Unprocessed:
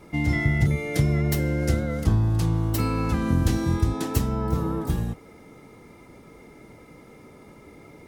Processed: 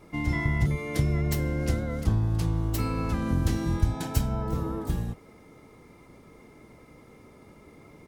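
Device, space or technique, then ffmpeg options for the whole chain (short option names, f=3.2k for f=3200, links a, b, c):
octave pedal: -filter_complex "[0:a]asplit=2[a][b];[b]asetrate=22050,aresample=44100,atempo=2,volume=-8dB[c];[a][c]amix=inputs=2:normalize=0,asettb=1/sr,asplit=3[d][e][f];[d]atrim=end=3.814[g];[e]atrim=start=3.81:end=4.43,asetpts=PTS-STARTPTS,afade=t=in:d=0.004:c=qsin,afade=t=out:st=0.616:d=0.004:c=qsin,aecho=1:1:1.3:0.48,atrim=end_sample=27342[h];[f]atrim=start=4.426[i];[g][h]acrossfade=d=0.004:c1=hsin:c2=qsin[j];[j][i]acrossfade=d=0.004:c1=qsin:c2=hsin,volume=-4.5dB"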